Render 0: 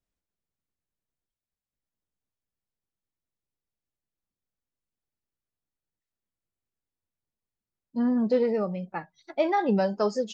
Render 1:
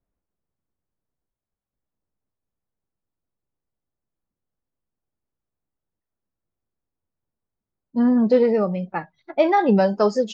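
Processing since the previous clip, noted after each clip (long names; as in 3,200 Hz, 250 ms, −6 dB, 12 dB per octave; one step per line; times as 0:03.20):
low-pass that shuts in the quiet parts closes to 1,200 Hz, open at −26 dBFS
high-shelf EQ 5,900 Hz −6.5 dB
level +7 dB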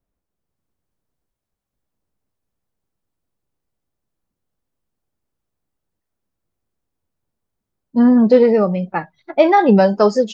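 automatic gain control gain up to 4 dB
level +2.5 dB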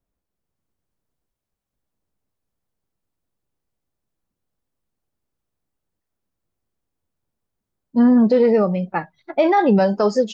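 brickwall limiter −6 dBFS, peak gain reduction 5 dB
level −1.5 dB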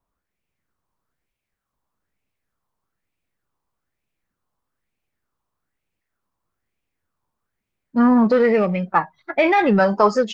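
in parallel at −10 dB: hard clipping −19 dBFS, distortion −7 dB
on the sum: auto-filter bell 1.1 Hz 990–2,500 Hz +15 dB
level −3 dB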